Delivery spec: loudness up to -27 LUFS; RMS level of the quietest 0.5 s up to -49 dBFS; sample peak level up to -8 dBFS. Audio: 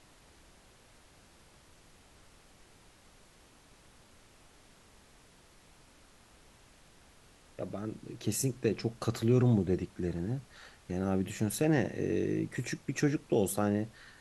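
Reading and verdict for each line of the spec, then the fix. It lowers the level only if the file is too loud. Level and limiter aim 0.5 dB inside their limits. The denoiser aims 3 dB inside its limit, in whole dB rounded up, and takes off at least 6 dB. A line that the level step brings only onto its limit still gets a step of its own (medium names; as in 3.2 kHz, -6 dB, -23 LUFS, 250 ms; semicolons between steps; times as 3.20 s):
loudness -32.5 LUFS: pass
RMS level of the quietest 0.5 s -60 dBFS: pass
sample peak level -15.0 dBFS: pass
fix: none needed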